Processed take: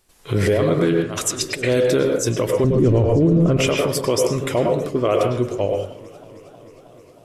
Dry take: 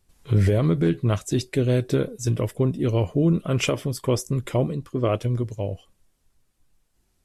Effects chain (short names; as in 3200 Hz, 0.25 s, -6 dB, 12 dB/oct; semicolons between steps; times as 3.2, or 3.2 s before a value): 1.01–1.64 negative-ratio compressor -32 dBFS, ratio -1; 2.64–3.57 tilt -4.5 dB/oct; 5.29–5.69 LPF 9900 Hz; tone controls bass -12 dB, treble 0 dB; reverb RT60 0.45 s, pre-delay 92 ms, DRR 4 dB; maximiser +17.5 dB; warbling echo 0.313 s, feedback 78%, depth 108 cents, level -23 dB; gain -8 dB